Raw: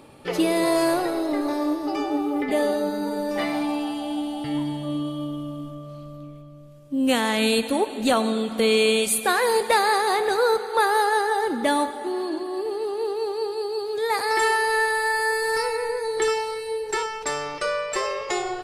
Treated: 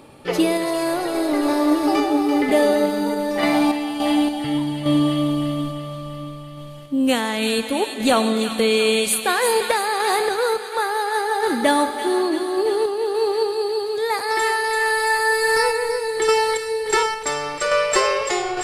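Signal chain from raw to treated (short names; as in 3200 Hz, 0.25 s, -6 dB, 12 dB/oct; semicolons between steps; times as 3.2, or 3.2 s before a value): vocal rider within 4 dB 0.5 s; on a send: thin delay 0.339 s, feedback 69%, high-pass 1600 Hz, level -7 dB; on the sum: random-step tremolo; gain +6 dB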